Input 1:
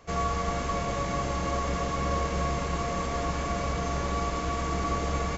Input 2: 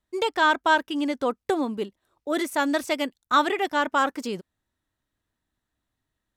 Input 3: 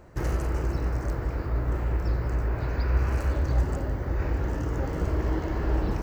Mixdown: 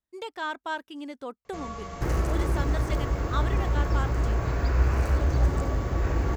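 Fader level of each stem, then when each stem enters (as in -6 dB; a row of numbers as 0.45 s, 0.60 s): -9.5 dB, -12.0 dB, +1.5 dB; 1.45 s, 0.00 s, 1.85 s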